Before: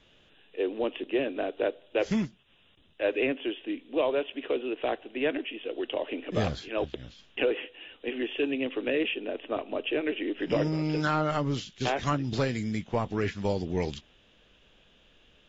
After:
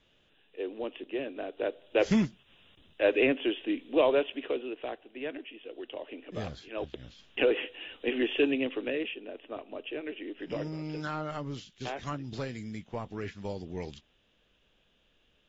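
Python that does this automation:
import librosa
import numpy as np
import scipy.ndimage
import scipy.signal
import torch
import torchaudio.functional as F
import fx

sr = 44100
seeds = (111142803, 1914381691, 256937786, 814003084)

y = fx.gain(x, sr, db=fx.line((1.47, -6.5), (2.04, 2.5), (4.16, 2.5), (4.96, -9.0), (6.51, -9.0), (7.63, 3.0), (8.42, 3.0), (9.21, -8.5)))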